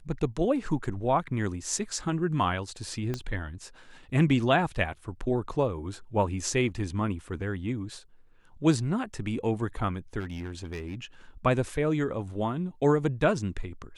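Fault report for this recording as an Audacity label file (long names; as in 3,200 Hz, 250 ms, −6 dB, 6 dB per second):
3.140000	3.140000	click −18 dBFS
10.190000	10.950000	clipping −31.5 dBFS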